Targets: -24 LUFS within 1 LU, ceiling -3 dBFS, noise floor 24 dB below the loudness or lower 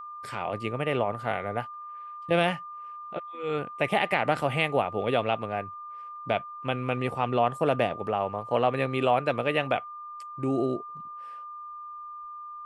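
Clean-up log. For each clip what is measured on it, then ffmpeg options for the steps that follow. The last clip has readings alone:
steady tone 1.2 kHz; tone level -38 dBFS; loudness -28.0 LUFS; peak level -9.5 dBFS; loudness target -24.0 LUFS
-> -af "bandreject=f=1200:w=30"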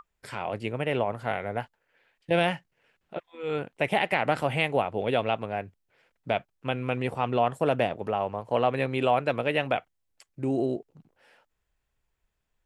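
steady tone not found; loudness -28.0 LUFS; peak level -9.5 dBFS; loudness target -24.0 LUFS
-> -af "volume=1.58"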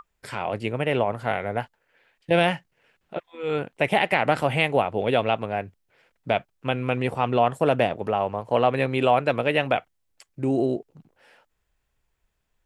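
loudness -24.5 LUFS; peak level -5.5 dBFS; noise floor -74 dBFS

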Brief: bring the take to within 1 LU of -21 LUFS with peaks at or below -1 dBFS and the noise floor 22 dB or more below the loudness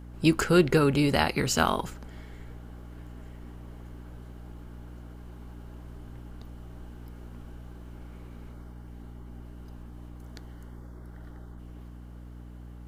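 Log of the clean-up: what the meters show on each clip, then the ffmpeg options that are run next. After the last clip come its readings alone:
hum 60 Hz; highest harmonic 300 Hz; hum level -42 dBFS; loudness -24.5 LUFS; peak level -7.0 dBFS; loudness target -21.0 LUFS
-> -af "bandreject=f=60:t=h:w=4,bandreject=f=120:t=h:w=4,bandreject=f=180:t=h:w=4,bandreject=f=240:t=h:w=4,bandreject=f=300:t=h:w=4"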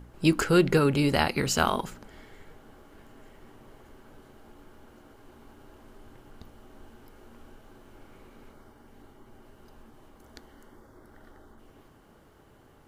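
hum not found; loudness -24.5 LUFS; peak level -7.0 dBFS; loudness target -21.0 LUFS
-> -af "volume=1.5"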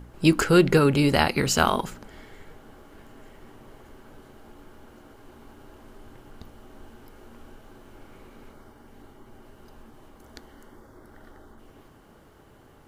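loudness -21.0 LUFS; peak level -3.5 dBFS; noise floor -53 dBFS

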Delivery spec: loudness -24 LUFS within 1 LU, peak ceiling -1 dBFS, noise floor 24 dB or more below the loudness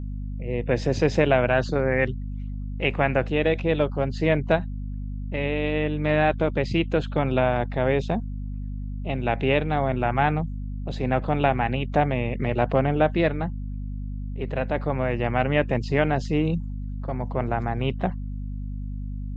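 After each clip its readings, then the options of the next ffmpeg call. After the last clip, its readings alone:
hum 50 Hz; highest harmonic 250 Hz; hum level -29 dBFS; loudness -25.0 LUFS; peak level -5.0 dBFS; loudness target -24.0 LUFS
-> -af "bandreject=f=50:t=h:w=4,bandreject=f=100:t=h:w=4,bandreject=f=150:t=h:w=4,bandreject=f=200:t=h:w=4,bandreject=f=250:t=h:w=4"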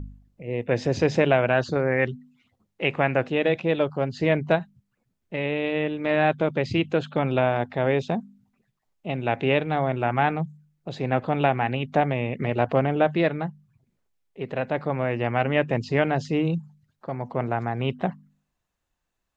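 hum not found; loudness -25.0 LUFS; peak level -5.5 dBFS; loudness target -24.0 LUFS
-> -af "volume=1.12"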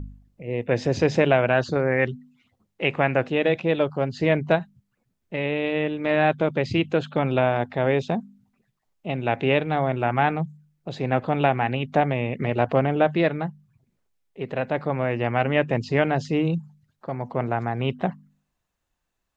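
loudness -24.0 LUFS; peak level -4.5 dBFS; noise floor -77 dBFS

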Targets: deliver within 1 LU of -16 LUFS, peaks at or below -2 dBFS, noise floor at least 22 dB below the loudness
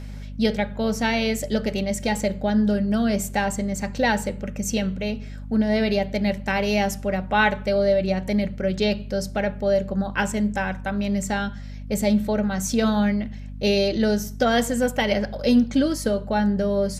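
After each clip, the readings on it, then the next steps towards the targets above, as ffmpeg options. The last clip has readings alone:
hum 50 Hz; highest harmonic 250 Hz; hum level -33 dBFS; loudness -23.0 LUFS; peak level -7.0 dBFS; loudness target -16.0 LUFS
-> -af "bandreject=f=50:t=h:w=6,bandreject=f=100:t=h:w=6,bandreject=f=150:t=h:w=6,bandreject=f=200:t=h:w=6,bandreject=f=250:t=h:w=6"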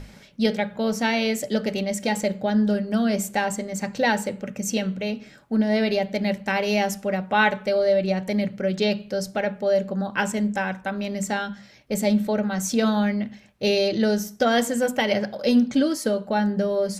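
hum not found; loudness -23.5 LUFS; peak level -6.5 dBFS; loudness target -16.0 LUFS
-> -af "volume=2.37,alimiter=limit=0.794:level=0:latency=1"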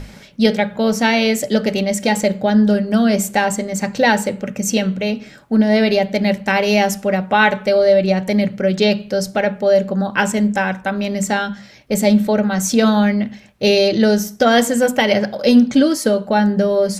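loudness -16.5 LUFS; peak level -2.0 dBFS; noise floor -42 dBFS

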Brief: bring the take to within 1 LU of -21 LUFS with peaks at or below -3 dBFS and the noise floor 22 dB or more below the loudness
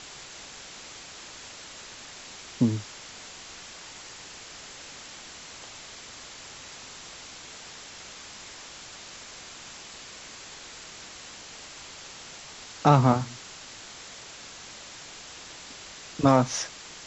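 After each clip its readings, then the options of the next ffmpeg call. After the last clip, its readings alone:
noise floor -45 dBFS; noise floor target -55 dBFS; loudness -32.5 LUFS; peak level -6.5 dBFS; loudness target -21.0 LUFS
-> -af "afftdn=nr=10:nf=-45"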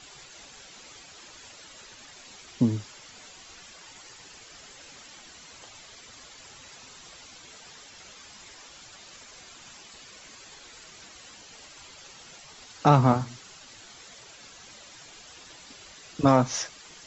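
noise floor -49 dBFS; loudness -24.0 LUFS; peak level -6.5 dBFS; loudness target -21.0 LUFS
-> -af "volume=1.41"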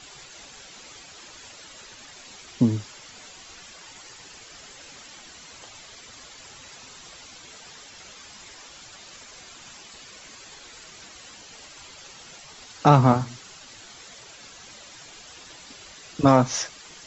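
loudness -21.0 LUFS; peak level -3.5 dBFS; noise floor -46 dBFS

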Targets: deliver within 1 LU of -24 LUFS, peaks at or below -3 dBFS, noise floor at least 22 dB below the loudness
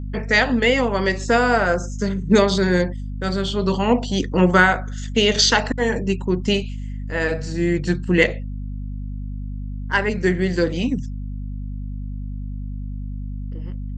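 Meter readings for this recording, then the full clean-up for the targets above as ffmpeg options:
hum 50 Hz; highest harmonic 250 Hz; hum level -26 dBFS; loudness -19.5 LUFS; peak level -1.5 dBFS; loudness target -24.0 LUFS
-> -af "bandreject=f=50:t=h:w=4,bandreject=f=100:t=h:w=4,bandreject=f=150:t=h:w=4,bandreject=f=200:t=h:w=4,bandreject=f=250:t=h:w=4"
-af "volume=0.596"

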